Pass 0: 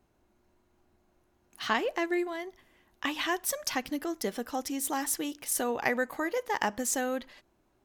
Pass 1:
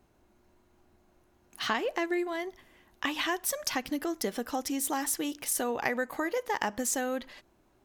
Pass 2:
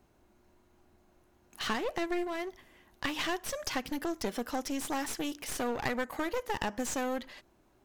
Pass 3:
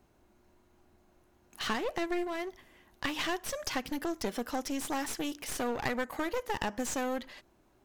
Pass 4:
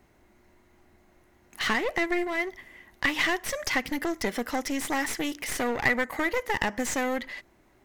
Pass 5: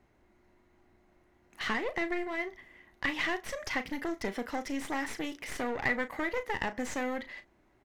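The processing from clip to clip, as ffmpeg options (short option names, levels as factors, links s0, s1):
-af "acompressor=threshold=0.02:ratio=2,volume=1.58"
-filter_complex "[0:a]aeval=exprs='clip(val(0),-1,0.015)':c=same,acrossover=split=7200[s0][s1];[s1]acompressor=threshold=0.00708:ratio=4:attack=1:release=60[s2];[s0][s2]amix=inputs=2:normalize=0"
-af anull
-af "equalizer=f=2000:t=o:w=0.31:g=11,volume=1.68"
-filter_complex "[0:a]lowpass=f=3800:p=1,asplit=2[s0][s1];[s1]adelay=36,volume=0.266[s2];[s0][s2]amix=inputs=2:normalize=0,volume=0.531"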